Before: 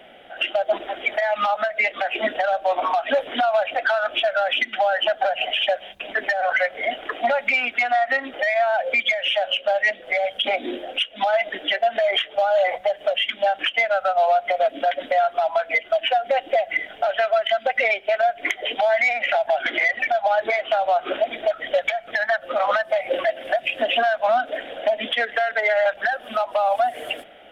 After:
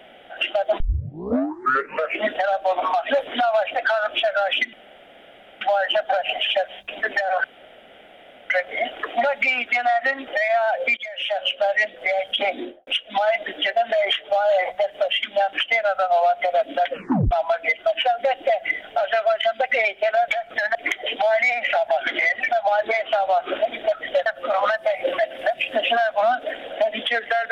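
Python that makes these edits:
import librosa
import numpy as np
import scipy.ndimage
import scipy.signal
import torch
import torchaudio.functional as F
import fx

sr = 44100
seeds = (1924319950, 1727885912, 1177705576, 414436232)

y = fx.studio_fade_out(x, sr, start_s=10.57, length_s=0.36)
y = fx.edit(y, sr, fx.tape_start(start_s=0.8, length_s=1.47),
    fx.insert_room_tone(at_s=4.73, length_s=0.88),
    fx.insert_room_tone(at_s=6.56, length_s=1.06),
    fx.fade_in_from(start_s=9.03, length_s=0.5, floor_db=-17.5),
    fx.tape_stop(start_s=14.96, length_s=0.41),
    fx.move(start_s=21.85, length_s=0.47, to_s=18.34), tone=tone)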